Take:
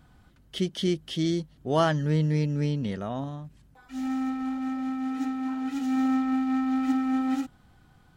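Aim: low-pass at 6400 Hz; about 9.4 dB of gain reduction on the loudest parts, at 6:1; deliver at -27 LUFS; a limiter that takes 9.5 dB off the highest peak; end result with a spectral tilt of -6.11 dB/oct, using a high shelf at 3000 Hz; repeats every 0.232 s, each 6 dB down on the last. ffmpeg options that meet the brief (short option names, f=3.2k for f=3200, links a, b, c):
-af "lowpass=6.4k,highshelf=f=3k:g=-6,acompressor=threshold=-30dB:ratio=6,alimiter=level_in=7.5dB:limit=-24dB:level=0:latency=1,volume=-7.5dB,aecho=1:1:232|464|696|928|1160|1392:0.501|0.251|0.125|0.0626|0.0313|0.0157,volume=12dB"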